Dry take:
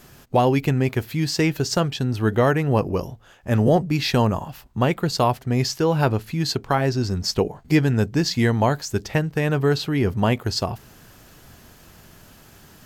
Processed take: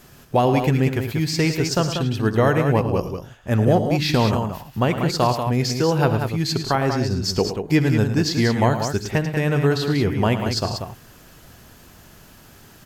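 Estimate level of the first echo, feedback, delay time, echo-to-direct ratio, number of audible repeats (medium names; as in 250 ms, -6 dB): -20.0 dB, no regular repeats, 62 ms, -5.0 dB, 3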